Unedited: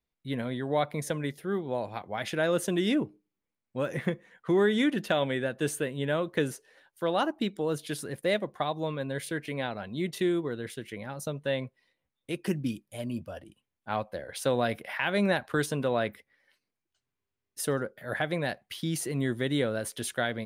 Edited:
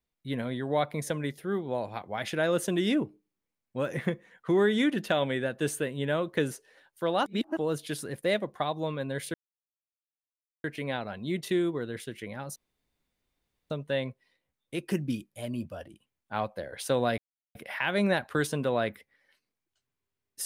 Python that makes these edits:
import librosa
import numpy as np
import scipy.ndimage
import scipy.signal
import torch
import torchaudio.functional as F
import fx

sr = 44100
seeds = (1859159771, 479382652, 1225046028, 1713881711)

y = fx.edit(x, sr, fx.reverse_span(start_s=7.26, length_s=0.31),
    fx.insert_silence(at_s=9.34, length_s=1.3),
    fx.insert_room_tone(at_s=11.26, length_s=1.14),
    fx.insert_silence(at_s=14.74, length_s=0.37), tone=tone)